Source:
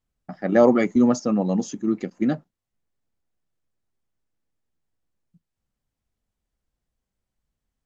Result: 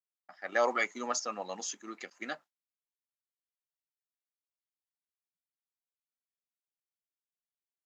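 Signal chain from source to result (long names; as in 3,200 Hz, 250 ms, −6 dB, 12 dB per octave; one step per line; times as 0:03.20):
high-pass filter 1,200 Hz 12 dB per octave
noise gate with hold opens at −57 dBFS
automatic gain control gain up to 7 dB
level −6 dB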